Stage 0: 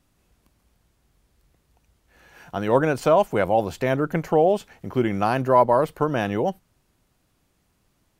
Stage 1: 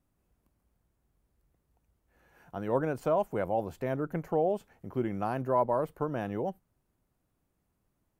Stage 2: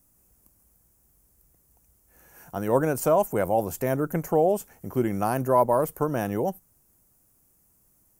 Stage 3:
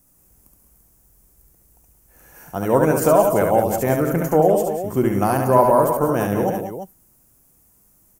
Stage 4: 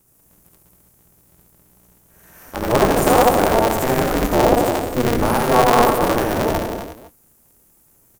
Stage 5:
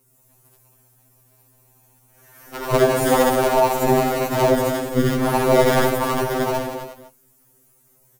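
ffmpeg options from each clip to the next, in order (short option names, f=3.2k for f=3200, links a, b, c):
-af "equalizer=f=4.2k:w=0.51:g=-10,volume=-9dB"
-af "aexciter=amount=5.3:drive=6.2:freq=5.5k,volume=6.5dB"
-af "aecho=1:1:70|179|202|340:0.596|0.316|0.251|0.299,volume=5dB"
-af "aecho=1:1:81.63|242:0.794|0.316,aeval=exprs='val(0)*sgn(sin(2*PI*120*n/s))':c=same,volume=-1dB"
-af "afftfilt=real='re*2.45*eq(mod(b,6),0)':imag='im*2.45*eq(mod(b,6),0)':win_size=2048:overlap=0.75"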